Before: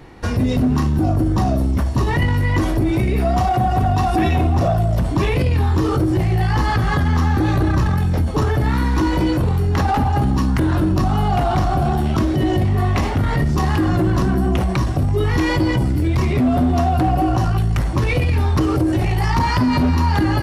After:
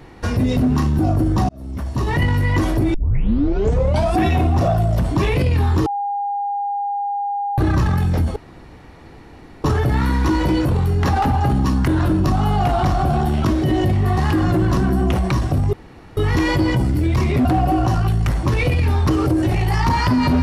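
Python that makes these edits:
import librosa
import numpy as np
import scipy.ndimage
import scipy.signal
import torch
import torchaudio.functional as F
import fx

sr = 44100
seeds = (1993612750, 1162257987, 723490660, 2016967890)

y = fx.edit(x, sr, fx.fade_in_span(start_s=1.49, length_s=0.72),
    fx.tape_start(start_s=2.94, length_s=1.24),
    fx.bleep(start_s=5.86, length_s=1.72, hz=810.0, db=-19.5),
    fx.insert_room_tone(at_s=8.36, length_s=1.28),
    fx.cut(start_s=12.89, length_s=0.73),
    fx.insert_room_tone(at_s=15.18, length_s=0.44),
    fx.cut(start_s=16.46, length_s=0.49), tone=tone)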